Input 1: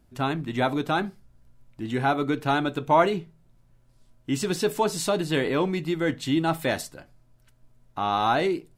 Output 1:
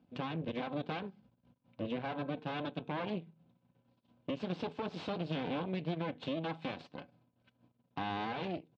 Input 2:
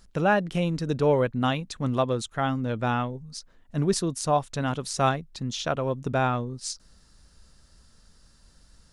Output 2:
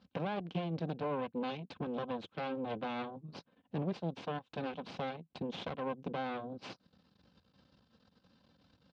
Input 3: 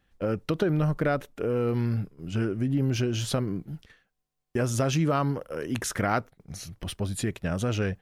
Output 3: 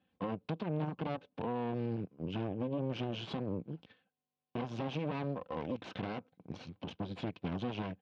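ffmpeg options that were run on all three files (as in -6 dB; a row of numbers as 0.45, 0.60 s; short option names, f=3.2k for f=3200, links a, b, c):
-af "aecho=1:1:3.9:0.54,alimiter=limit=-19dB:level=0:latency=1:release=271,acompressor=threshold=-39dB:ratio=2,aeval=exprs='0.075*(cos(1*acos(clip(val(0)/0.075,-1,1)))-cos(1*PI/2))+0.0188*(cos(2*acos(clip(val(0)/0.075,-1,1)))-cos(2*PI/2))+0.00168*(cos(3*acos(clip(val(0)/0.075,-1,1)))-cos(3*PI/2))+0.0133*(cos(4*acos(clip(val(0)/0.075,-1,1)))-cos(4*PI/2))+0.0335*(cos(6*acos(clip(val(0)/0.075,-1,1)))-cos(6*PI/2))':c=same,highpass=f=100:w=0.5412,highpass=f=100:w=1.3066,equalizer=f=170:t=q:w=4:g=4,equalizer=f=1.3k:t=q:w=4:g=-6,equalizer=f=1.9k:t=q:w=4:g=-10,lowpass=f=3.5k:w=0.5412,lowpass=f=3.5k:w=1.3066,volume=-4dB"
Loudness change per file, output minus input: -14.0, -13.0, -11.0 LU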